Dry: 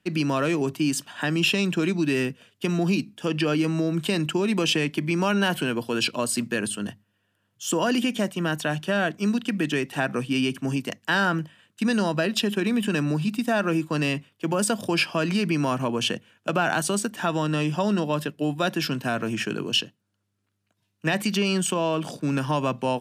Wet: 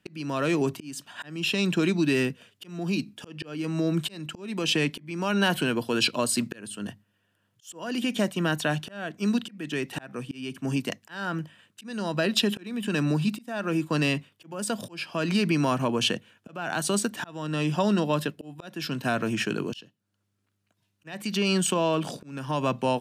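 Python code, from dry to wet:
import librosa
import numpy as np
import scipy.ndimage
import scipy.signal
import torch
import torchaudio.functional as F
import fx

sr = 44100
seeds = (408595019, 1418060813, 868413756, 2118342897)

y = fx.auto_swell(x, sr, attack_ms=475.0)
y = fx.dynamic_eq(y, sr, hz=4000.0, q=6.1, threshold_db=-54.0, ratio=4.0, max_db=5)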